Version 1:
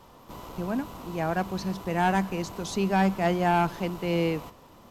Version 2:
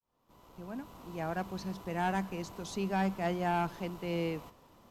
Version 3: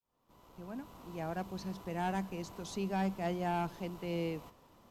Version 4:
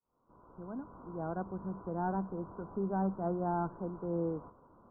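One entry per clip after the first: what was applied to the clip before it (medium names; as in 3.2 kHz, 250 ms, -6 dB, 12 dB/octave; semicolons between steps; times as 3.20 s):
fade-in on the opening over 1.23 s; trim -8 dB
dynamic bell 1.5 kHz, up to -4 dB, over -48 dBFS, Q 1; trim -2 dB
rippled Chebyshev low-pass 1.5 kHz, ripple 3 dB; trim +3 dB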